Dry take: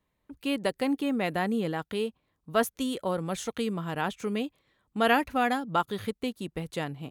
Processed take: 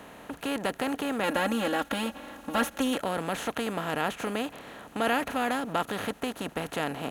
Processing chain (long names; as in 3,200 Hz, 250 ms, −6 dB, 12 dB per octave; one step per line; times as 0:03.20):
compressor on every frequency bin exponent 0.4
0:01.23–0:02.97: comb filter 3.6 ms, depth 93%
level −6.5 dB